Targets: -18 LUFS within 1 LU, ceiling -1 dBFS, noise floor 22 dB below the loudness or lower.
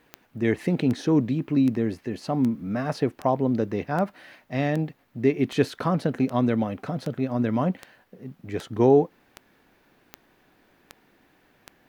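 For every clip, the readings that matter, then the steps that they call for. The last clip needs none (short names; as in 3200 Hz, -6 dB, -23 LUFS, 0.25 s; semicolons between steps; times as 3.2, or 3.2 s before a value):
clicks 16; loudness -25.0 LUFS; peak -6.5 dBFS; loudness target -18.0 LUFS
-> de-click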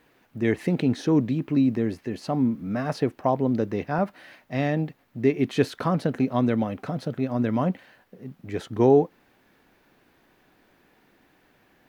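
clicks 0; loudness -25.0 LUFS; peak -6.5 dBFS; loudness target -18.0 LUFS
-> gain +7 dB; limiter -1 dBFS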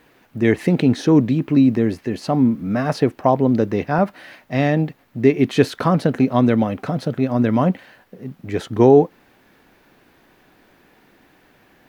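loudness -18.5 LUFS; peak -1.0 dBFS; noise floor -56 dBFS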